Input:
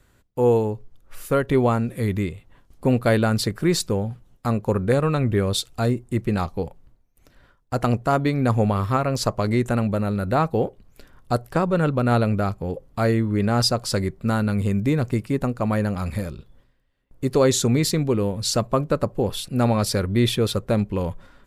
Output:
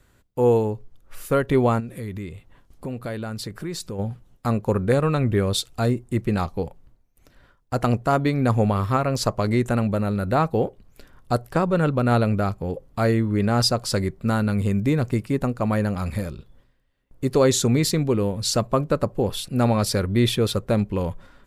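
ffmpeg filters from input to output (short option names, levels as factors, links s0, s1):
-filter_complex "[0:a]asplit=3[s0][s1][s2];[s0]afade=t=out:st=1.79:d=0.02[s3];[s1]acompressor=threshold=0.0251:ratio=2.5:attack=3.2:release=140:knee=1:detection=peak,afade=t=in:st=1.79:d=0.02,afade=t=out:st=3.98:d=0.02[s4];[s2]afade=t=in:st=3.98:d=0.02[s5];[s3][s4][s5]amix=inputs=3:normalize=0"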